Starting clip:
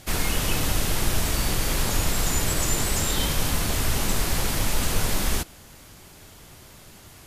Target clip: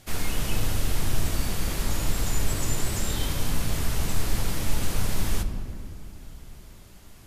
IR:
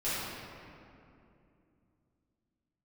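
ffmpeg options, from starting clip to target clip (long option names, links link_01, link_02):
-filter_complex "[0:a]asplit=2[link_01][link_02];[1:a]atrim=start_sample=2205,lowshelf=frequency=370:gain=9.5[link_03];[link_02][link_03]afir=irnorm=-1:irlink=0,volume=-16dB[link_04];[link_01][link_04]amix=inputs=2:normalize=0,volume=-7.5dB"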